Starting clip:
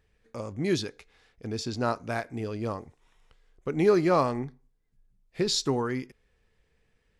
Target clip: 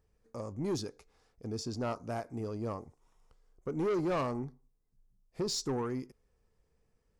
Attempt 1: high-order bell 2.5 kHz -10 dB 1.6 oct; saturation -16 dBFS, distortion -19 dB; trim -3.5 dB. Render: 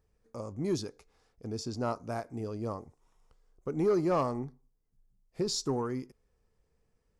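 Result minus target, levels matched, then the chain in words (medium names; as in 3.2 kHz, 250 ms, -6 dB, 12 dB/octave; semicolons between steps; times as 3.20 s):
saturation: distortion -9 dB
high-order bell 2.5 kHz -10 dB 1.6 oct; saturation -24 dBFS, distortion -10 dB; trim -3.5 dB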